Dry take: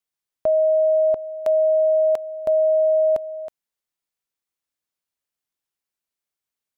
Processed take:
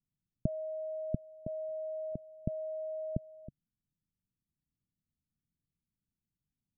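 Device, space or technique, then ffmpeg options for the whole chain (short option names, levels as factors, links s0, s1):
the neighbour's flat through the wall: -filter_complex "[0:a]asplit=3[s0][s1][s2];[s0]afade=t=out:st=1.69:d=0.02[s3];[s1]highpass=f=61:w=0.5412,highpass=f=61:w=1.3066,afade=t=in:st=1.69:d=0.02,afade=t=out:st=2.12:d=0.02[s4];[s2]afade=t=in:st=2.12:d=0.02[s5];[s3][s4][s5]amix=inputs=3:normalize=0,lowpass=f=220:w=0.5412,lowpass=f=220:w=1.3066,equalizer=f=140:t=o:w=0.77:g=3,volume=5.62"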